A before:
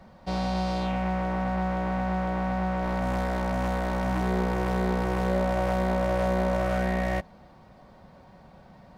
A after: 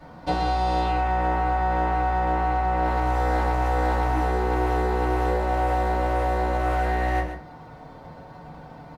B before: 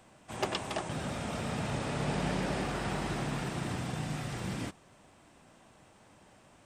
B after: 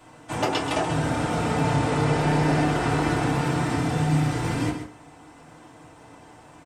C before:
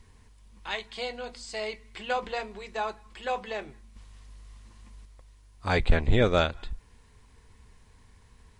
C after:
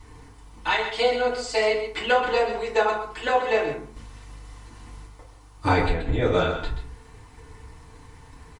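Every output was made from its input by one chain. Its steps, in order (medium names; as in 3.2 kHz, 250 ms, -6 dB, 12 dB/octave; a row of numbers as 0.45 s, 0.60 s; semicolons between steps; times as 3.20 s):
transient shaper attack +5 dB, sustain 0 dB; compression 10:1, threshold -27 dBFS; on a send: delay 131 ms -9.5 dB; on the sum: FDN reverb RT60 0.45 s, low-frequency decay 0.8×, high-frequency decay 0.45×, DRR -8 dB; band noise 720–1200 Hz -64 dBFS; normalise loudness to -24 LUFS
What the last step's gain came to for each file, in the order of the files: -1.0 dB, +1.5 dB, +2.0 dB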